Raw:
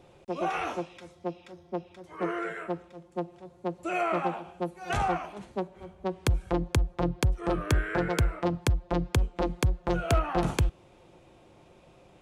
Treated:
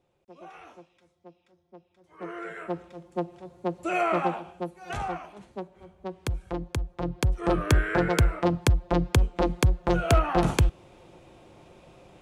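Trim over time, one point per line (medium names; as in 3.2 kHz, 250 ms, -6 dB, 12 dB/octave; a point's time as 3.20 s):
1.92 s -16.5 dB
2.16 s -9 dB
2.83 s +3 dB
4.29 s +3 dB
4.92 s -4.5 dB
6.94 s -4.5 dB
7.45 s +4 dB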